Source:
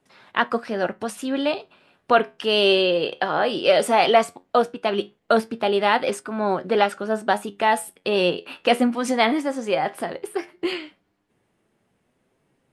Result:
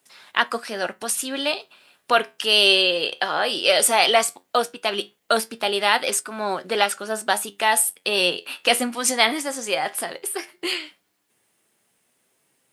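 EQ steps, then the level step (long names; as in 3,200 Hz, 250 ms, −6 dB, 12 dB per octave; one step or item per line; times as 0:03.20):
spectral tilt +3 dB per octave
high-shelf EQ 5,100 Hz +8 dB
−1.0 dB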